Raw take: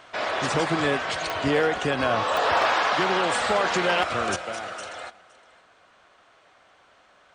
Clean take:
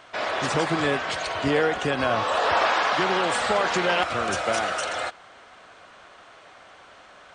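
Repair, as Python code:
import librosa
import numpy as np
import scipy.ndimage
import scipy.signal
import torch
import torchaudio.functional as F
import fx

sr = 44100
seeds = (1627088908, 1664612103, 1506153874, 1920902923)

y = fx.fix_declip(x, sr, threshold_db=-13.5)
y = fx.fix_declick_ar(y, sr, threshold=10.0)
y = fx.fix_echo_inverse(y, sr, delay_ms=515, level_db=-20.5)
y = fx.gain(y, sr, db=fx.steps((0.0, 0.0), (4.36, 8.5)))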